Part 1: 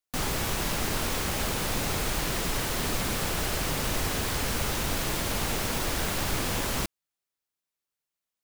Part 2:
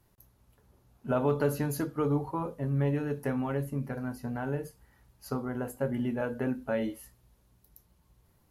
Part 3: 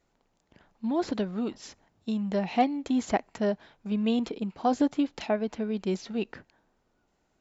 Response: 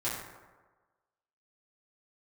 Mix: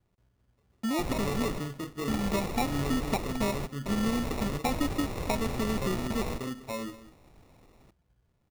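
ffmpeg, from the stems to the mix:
-filter_complex "[0:a]adelay=850,volume=-3.5dB,asplit=2[link_01][link_02];[link_02]volume=-24dB[link_03];[1:a]volume=-5dB,asplit=2[link_04][link_05];[link_05]volume=-15.5dB[link_06];[2:a]aeval=exprs='val(0)*gte(abs(val(0)),0.0158)':channel_layout=same,volume=1dB,asplit=2[link_07][link_08];[link_08]apad=whole_len=409265[link_09];[link_01][link_09]sidechaingate=range=-33dB:threshold=-42dB:ratio=16:detection=peak[link_10];[link_04][link_07]amix=inputs=2:normalize=0,acompressor=threshold=-26dB:ratio=6,volume=0dB[link_11];[link_03][link_06]amix=inputs=2:normalize=0,aecho=0:1:199:1[link_12];[link_10][link_11][link_12]amix=inputs=3:normalize=0,lowpass=frequency=1500:poles=1,acrusher=samples=28:mix=1:aa=0.000001"

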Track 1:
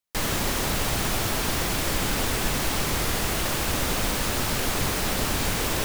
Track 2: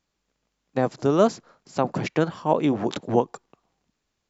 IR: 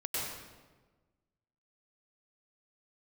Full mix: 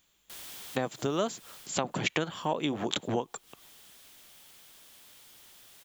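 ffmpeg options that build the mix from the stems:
-filter_complex "[0:a]equalizer=frequency=270:width=1.8:gain=-14,aeval=exprs='(mod(29.9*val(0)+1,2)-1)/29.9':channel_layout=same,adelay=150,volume=-11dB,afade=type=out:start_time=1.36:duration=0.35:silence=0.298538[link_01];[1:a]equalizer=frequency=5200:width_type=o:width=0.69:gain=-11.5,acompressor=threshold=-32dB:ratio=3,crystalizer=i=6.5:c=0,volume=0.5dB,asplit=2[link_02][link_03];[link_03]apad=whole_len=264308[link_04];[link_01][link_04]sidechaincompress=threshold=-49dB:ratio=8:attack=6.1:release=157[link_05];[link_05][link_02]amix=inputs=2:normalize=0,equalizer=frequency=3300:width_type=o:width=0.39:gain=6.5"

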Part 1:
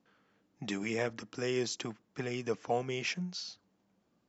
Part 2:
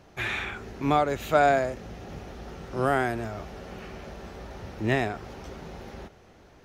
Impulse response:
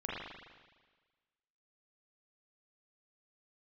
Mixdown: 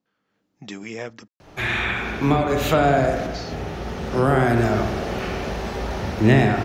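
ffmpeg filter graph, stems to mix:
-filter_complex "[0:a]volume=-7.5dB,asplit=3[link_01][link_02][link_03];[link_01]atrim=end=1.28,asetpts=PTS-STARTPTS,afade=type=out:start_time=1.276:duration=0.004:curve=hsin[link_04];[link_02]atrim=start=1.28:end=3.26,asetpts=PTS-STARTPTS,volume=0[link_05];[link_03]atrim=start=3.26,asetpts=PTS-STARTPTS,afade=type=in:duration=0.004:curve=hsin[link_06];[link_04][link_05][link_06]concat=n=3:v=0:a=1,asplit=2[link_07][link_08];[1:a]acrossover=split=260[link_09][link_10];[link_10]acompressor=threshold=-30dB:ratio=10[link_11];[link_09][link_11]amix=inputs=2:normalize=0,adelay=1400,volume=1.5dB,asplit=2[link_12][link_13];[link_13]volume=-4dB[link_14];[link_08]apad=whole_len=354916[link_15];[link_12][link_15]sidechaincompress=threshold=-56dB:ratio=8:attack=16:release=1280[link_16];[2:a]atrim=start_sample=2205[link_17];[link_14][link_17]afir=irnorm=-1:irlink=0[link_18];[link_07][link_16][link_18]amix=inputs=3:normalize=0,equalizer=frequency=4400:width_type=o:width=0.77:gain=2,dynaudnorm=framelen=120:gausssize=5:maxgain=8.5dB"

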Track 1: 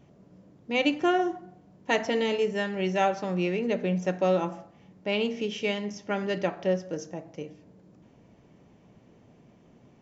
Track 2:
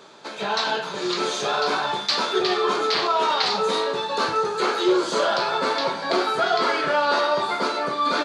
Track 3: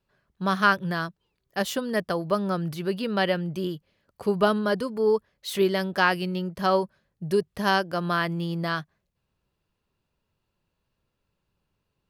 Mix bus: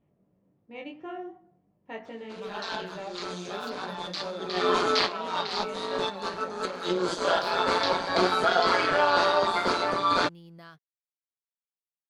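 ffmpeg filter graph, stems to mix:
ffmpeg -i stem1.wav -i stem2.wav -i stem3.wav -filter_complex "[0:a]lowpass=2500,flanger=delay=18:depth=4.6:speed=2.8,bandreject=frequency=1500:width=12,volume=-11dB,asplit=2[link_01][link_02];[1:a]tremolo=f=180:d=0.71,adelay=2050,volume=1.5dB[link_03];[2:a]acompressor=threshold=-23dB:ratio=6,aeval=exprs='sgn(val(0))*max(abs(val(0))-0.00237,0)':channel_layout=same,adelay=1950,volume=-19dB[link_04];[link_02]apad=whole_len=453814[link_05];[link_03][link_05]sidechaincompress=threshold=-53dB:ratio=6:attack=22:release=144[link_06];[link_01][link_06][link_04]amix=inputs=3:normalize=0" out.wav

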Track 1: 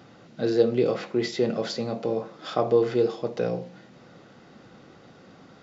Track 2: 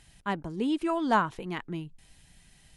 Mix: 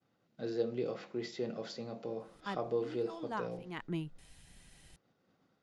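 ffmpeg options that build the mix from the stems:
ffmpeg -i stem1.wav -i stem2.wav -filter_complex "[0:a]agate=range=-33dB:threshold=-42dB:ratio=3:detection=peak,volume=-13.5dB,asplit=2[link_01][link_02];[1:a]adelay=2200,volume=-1.5dB[link_03];[link_02]apad=whole_len=218744[link_04];[link_03][link_04]sidechaincompress=threshold=-52dB:ratio=10:attack=6.7:release=303[link_05];[link_01][link_05]amix=inputs=2:normalize=0" out.wav

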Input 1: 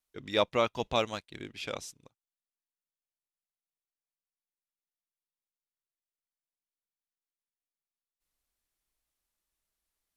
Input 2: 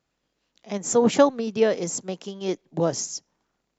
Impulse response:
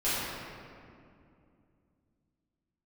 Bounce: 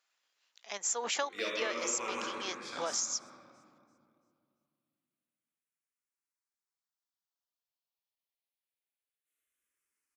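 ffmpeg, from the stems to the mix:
-filter_complex "[0:a]highpass=frequency=770:poles=1,alimiter=limit=-18.5dB:level=0:latency=1,asplit=2[link_01][link_02];[link_02]afreqshift=-0.25[link_03];[link_01][link_03]amix=inputs=2:normalize=1,adelay=1050,volume=-4.5dB,asplit=3[link_04][link_05][link_06];[link_05]volume=-3.5dB[link_07];[link_06]volume=-13dB[link_08];[1:a]highpass=1200,volume=1dB[link_09];[2:a]atrim=start_sample=2205[link_10];[link_07][link_10]afir=irnorm=-1:irlink=0[link_11];[link_08]aecho=0:1:339|678|1017|1356|1695:1|0.35|0.122|0.0429|0.015[link_12];[link_04][link_09][link_11][link_12]amix=inputs=4:normalize=0,acompressor=threshold=-30dB:ratio=6"

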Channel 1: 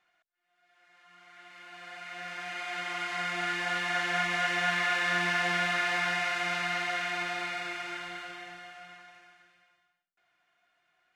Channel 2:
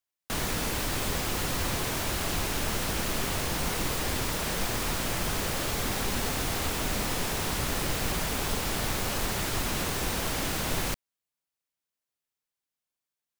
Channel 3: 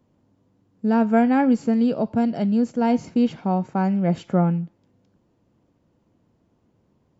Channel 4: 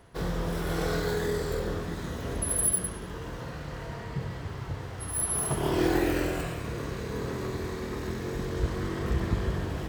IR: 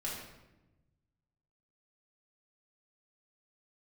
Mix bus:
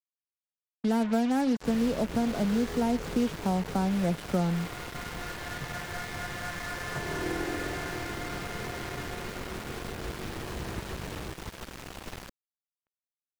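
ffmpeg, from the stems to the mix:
-filter_complex "[0:a]lowpass=frequency=2100:width=0.5412,lowpass=frequency=2100:width=1.3066,adelay=1800,volume=-8dB[link_01];[1:a]adelay=1350,volume=-11.5dB[link_02];[2:a]volume=-2dB[link_03];[3:a]lowpass=4100,adelay=1450,volume=-8dB,asplit=2[link_04][link_05];[link_05]volume=-8.5dB,aecho=0:1:694|1388|2082|2776|3470|4164|4858:1|0.49|0.24|0.118|0.0576|0.0282|0.0138[link_06];[link_01][link_02][link_03][link_04][link_06]amix=inputs=5:normalize=0,highshelf=frequency=5300:gain=-10,acrossover=split=150|420[link_07][link_08][link_09];[link_07]acompressor=threshold=-37dB:ratio=4[link_10];[link_08]acompressor=threshold=-29dB:ratio=4[link_11];[link_09]acompressor=threshold=-31dB:ratio=4[link_12];[link_10][link_11][link_12]amix=inputs=3:normalize=0,acrusher=bits=5:mix=0:aa=0.5"

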